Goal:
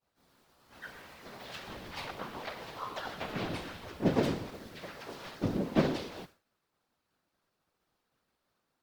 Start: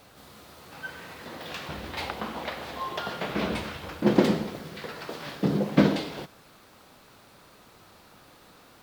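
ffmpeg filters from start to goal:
ffmpeg -i in.wav -filter_complex "[0:a]agate=range=-33dB:threshold=-41dB:ratio=3:detection=peak,afftfilt=real='hypot(re,im)*cos(2*PI*random(0))':imag='hypot(re,im)*sin(2*PI*random(1))':win_size=512:overlap=0.75,asplit=2[link_01][link_02];[link_02]asetrate=52444,aresample=44100,atempo=0.840896,volume=-4dB[link_03];[link_01][link_03]amix=inputs=2:normalize=0,volume=-2.5dB" out.wav

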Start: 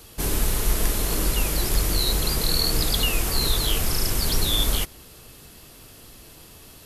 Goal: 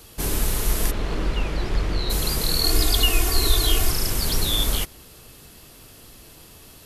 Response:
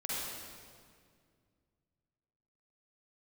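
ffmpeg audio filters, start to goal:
-filter_complex "[0:a]asplit=3[link_01][link_02][link_03];[link_01]afade=type=out:start_time=0.9:duration=0.02[link_04];[link_02]lowpass=2900,afade=type=in:start_time=0.9:duration=0.02,afade=type=out:start_time=2.09:duration=0.02[link_05];[link_03]afade=type=in:start_time=2.09:duration=0.02[link_06];[link_04][link_05][link_06]amix=inputs=3:normalize=0,asettb=1/sr,asplit=3[link_07][link_08][link_09];[link_07]atrim=end=2.644[link_10];[link_08]atrim=start=2.64:end=3.91,asetpts=PTS-STARTPTS,afade=type=in:duration=0.004:curve=qsin,afade=type=out:start_time=1.266:duration=0.004:curve=qsin,aecho=1:1:2.8:0.8,atrim=end_sample=56007[link_11];[link_09]atrim=start=3.906[link_12];[link_10][link_11]acrossfade=duration=0.004:curve1=hsin:curve2=qsin[link_13];[link_13][link_12]acrossfade=duration=0.004:curve1=qsin:curve2=hsin"

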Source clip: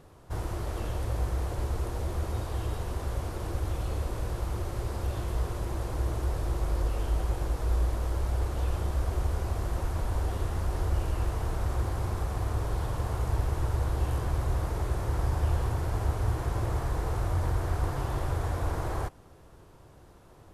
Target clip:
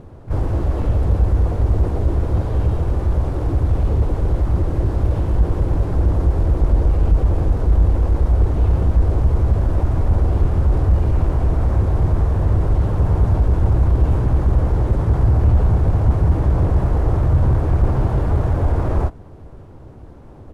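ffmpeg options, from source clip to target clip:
ffmpeg -i in.wav -filter_complex "[0:a]asplit=3[link_01][link_02][link_03];[link_02]asetrate=37084,aresample=44100,atempo=1.18921,volume=-1dB[link_04];[link_03]asetrate=66075,aresample=44100,atempo=0.66742,volume=-7dB[link_05];[link_01][link_04][link_05]amix=inputs=3:normalize=0,tiltshelf=frequency=810:gain=6,asoftclip=type=tanh:threshold=-12.5dB,aemphasis=mode=reproduction:type=cd,volume=6dB" out.wav

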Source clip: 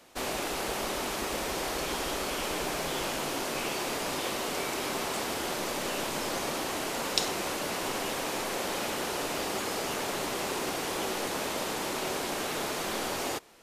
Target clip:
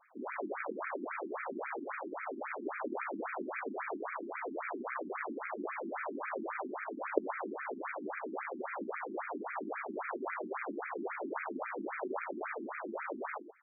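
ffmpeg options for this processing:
ffmpeg -i in.wav -af "aecho=1:1:125:0.355,aeval=exprs='0.708*(cos(1*acos(clip(val(0)/0.708,-1,1)))-cos(1*PI/2))+0.316*(cos(4*acos(clip(val(0)/0.708,-1,1)))-cos(4*PI/2))+0.0708*(cos(7*acos(clip(val(0)/0.708,-1,1)))-cos(7*PI/2))':channel_layout=same,afftfilt=real='re*between(b*sr/1024,250*pow(1800/250,0.5+0.5*sin(2*PI*3.7*pts/sr))/1.41,250*pow(1800/250,0.5+0.5*sin(2*PI*3.7*pts/sr))*1.41)':imag='im*between(b*sr/1024,250*pow(1800/250,0.5+0.5*sin(2*PI*3.7*pts/sr))/1.41,250*pow(1800/250,0.5+0.5*sin(2*PI*3.7*pts/sr))*1.41)':win_size=1024:overlap=0.75,volume=9dB" out.wav

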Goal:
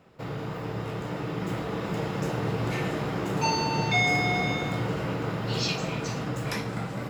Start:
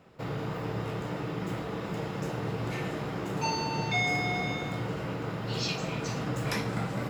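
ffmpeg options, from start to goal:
ffmpeg -i in.wav -af "dynaudnorm=framelen=210:gausssize=13:maxgain=4.5dB" out.wav

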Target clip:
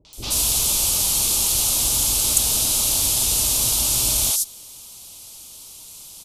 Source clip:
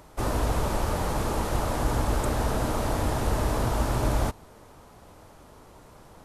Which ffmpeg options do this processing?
ffmpeg -i in.wav -filter_complex "[0:a]acrossover=split=490|4800[link_01][link_02][link_03];[link_02]adelay=50[link_04];[link_03]adelay=130[link_05];[link_01][link_04][link_05]amix=inputs=3:normalize=0,aexciter=amount=11.1:drive=9.6:freq=2800,volume=-6dB" out.wav

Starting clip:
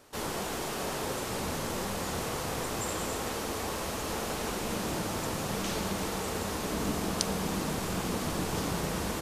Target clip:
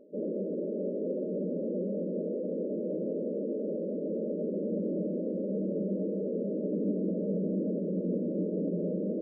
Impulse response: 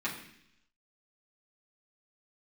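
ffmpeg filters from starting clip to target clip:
-filter_complex "[0:a]afftfilt=real='re*between(b*sr/4096,170,630)':imag='im*between(b*sr/4096,170,630)':win_size=4096:overlap=0.75,asplit=2[link_01][link_02];[link_02]alimiter=level_in=11dB:limit=-24dB:level=0:latency=1:release=10,volume=-11dB,volume=1.5dB[link_03];[link_01][link_03]amix=inputs=2:normalize=0"

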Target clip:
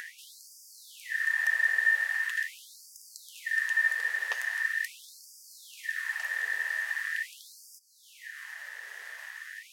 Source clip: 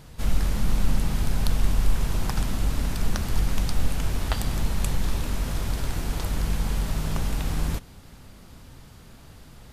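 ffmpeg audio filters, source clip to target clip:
ffmpeg -i in.wav -af "aeval=exprs='val(0)*sin(2*PI*1800*n/s)':channel_layout=same,acompressor=mode=upward:threshold=-25dB:ratio=2.5,afftfilt=real='re*gte(b*sr/1024,370*pow(4700/370,0.5+0.5*sin(2*PI*0.42*pts/sr)))':imag='im*gte(b*sr/1024,370*pow(4700/370,0.5+0.5*sin(2*PI*0.42*pts/sr)))':win_size=1024:overlap=0.75,volume=-5.5dB" out.wav

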